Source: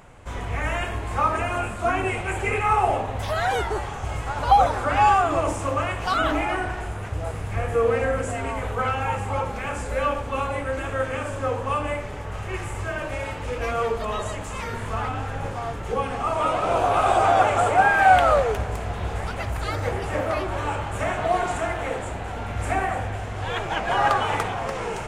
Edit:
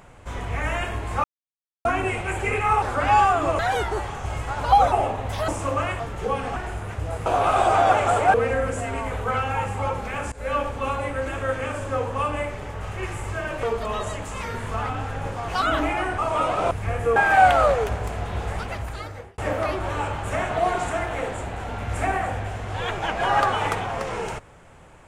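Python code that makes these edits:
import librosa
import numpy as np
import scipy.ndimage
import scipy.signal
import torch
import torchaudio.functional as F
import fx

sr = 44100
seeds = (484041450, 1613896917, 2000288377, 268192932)

y = fx.edit(x, sr, fx.silence(start_s=1.24, length_s=0.61),
    fx.swap(start_s=2.82, length_s=0.56, other_s=4.71, other_length_s=0.77),
    fx.swap(start_s=6.0, length_s=0.7, other_s=15.67, other_length_s=0.56),
    fx.swap(start_s=7.4, length_s=0.45, other_s=16.76, other_length_s=1.08),
    fx.fade_in_from(start_s=9.83, length_s=0.33, curve='qsin', floor_db=-20.0),
    fx.cut(start_s=13.14, length_s=0.68),
    fx.fade_out_span(start_s=19.27, length_s=0.79), tone=tone)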